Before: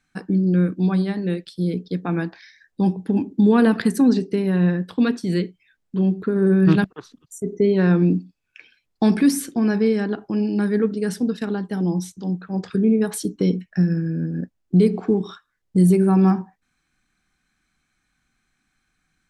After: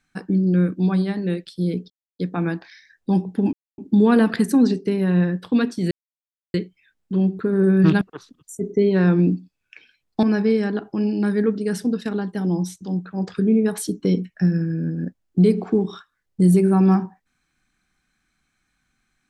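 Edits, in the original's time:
0:01.90: splice in silence 0.29 s
0:03.24: splice in silence 0.25 s
0:05.37: splice in silence 0.63 s
0:09.06–0:09.59: remove

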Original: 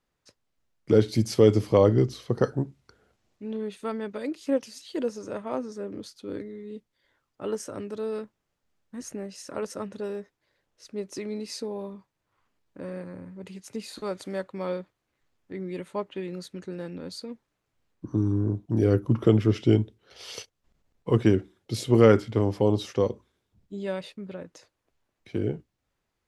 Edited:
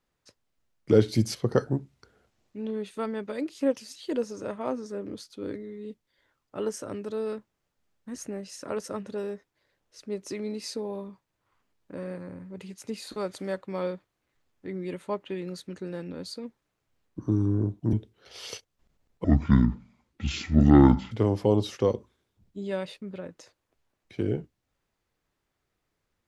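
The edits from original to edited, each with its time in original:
0:01.35–0:02.21: remove
0:18.79–0:19.78: remove
0:21.09–0:22.27: play speed 63%

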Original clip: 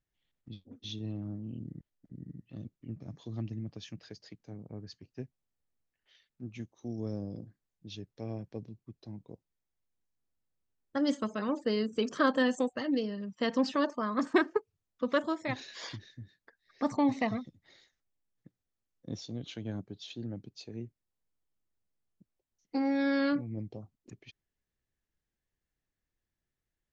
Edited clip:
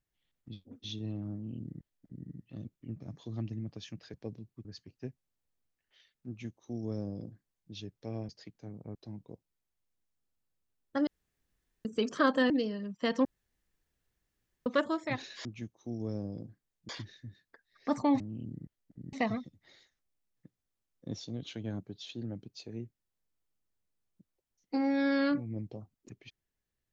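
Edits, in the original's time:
0:01.34–0:02.27: duplicate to 0:17.14
0:04.14–0:04.80: swap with 0:08.44–0:08.95
0:06.43–0:07.87: duplicate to 0:15.83
0:11.07–0:11.85: fill with room tone
0:12.50–0:12.88: remove
0:13.63–0:15.04: fill with room tone

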